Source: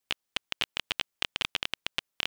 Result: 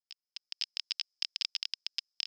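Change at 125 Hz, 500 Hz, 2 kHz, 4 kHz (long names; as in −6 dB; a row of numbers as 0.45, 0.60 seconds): below −40 dB, below −25 dB, −13.5 dB, −3.5 dB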